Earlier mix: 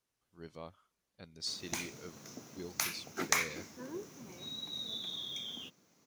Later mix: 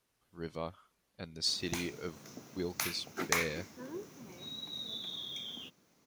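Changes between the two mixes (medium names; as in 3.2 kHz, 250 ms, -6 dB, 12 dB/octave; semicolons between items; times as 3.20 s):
speech +8.0 dB; master: add peaking EQ 6.4 kHz -3.5 dB 0.77 oct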